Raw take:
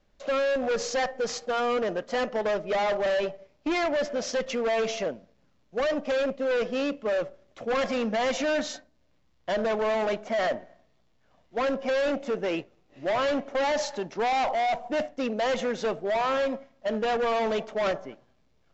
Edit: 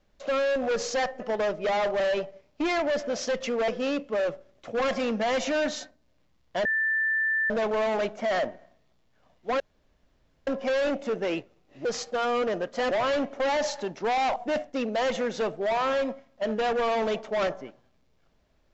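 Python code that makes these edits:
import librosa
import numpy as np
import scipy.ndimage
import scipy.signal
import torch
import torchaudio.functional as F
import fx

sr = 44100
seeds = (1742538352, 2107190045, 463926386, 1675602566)

y = fx.edit(x, sr, fx.move(start_s=1.2, length_s=1.06, to_s=13.06),
    fx.cut(start_s=4.74, length_s=1.87),
    fx.insert_tone(at_s=9.58, length_s=0.85, hz=1770.0, db=-22.5),
    fx.insert_room_tone(at_s=11.68, length_s=0.87),
    fx.cut(start_s=14.51, length_s=0.29), tone=tone)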